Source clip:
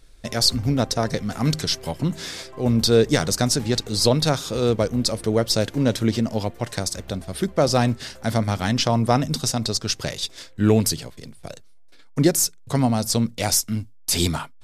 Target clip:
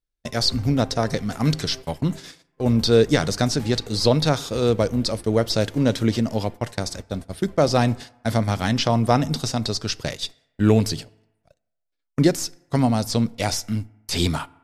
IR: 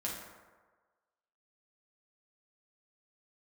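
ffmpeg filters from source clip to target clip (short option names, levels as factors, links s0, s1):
-filter_complex "[0:a]agate=range=0.0178:threshold=0.0316:ratio=16:detection=peak,acrossover=split=5200[s0][s1];[s1]acompressor=threshold=0.0178:ratio=4:attack=1:release=60[s2];[s0][s2]amix=inputs=2:normalize=0,asplit=2[s3][s4];[1:a]atrim=start_sample=2205,asetrate=61740,aresample=44100[s5];[s4][s5]afir=irnorm=-1:irlink=0,volume=0.126[s6];[s3][s6]amix=inputs=2:normalize=0"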